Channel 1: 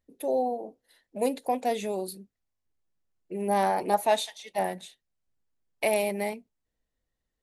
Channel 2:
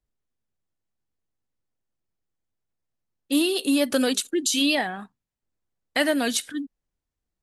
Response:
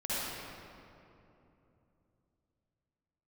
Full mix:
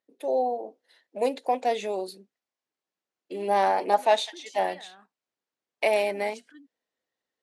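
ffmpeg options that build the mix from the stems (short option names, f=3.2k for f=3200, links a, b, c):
-filter_complex "[0:a]volume=-0.5dB[a];[1:a]bandreject=f=3.7k:w=5.5,acompressor=threshold=-30dB:ratio=6,volume=-16dB[b];[a][b]amix=inputs=2:normalize=0,dynaudnorm=f=190:g=3:m=3.5dB,highpass=350,lowpass=6k"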